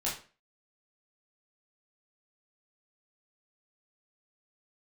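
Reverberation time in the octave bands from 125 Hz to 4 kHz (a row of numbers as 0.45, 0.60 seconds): 0.40, 0.40, 0.40, 0.35, 0.35, 0.30 seconds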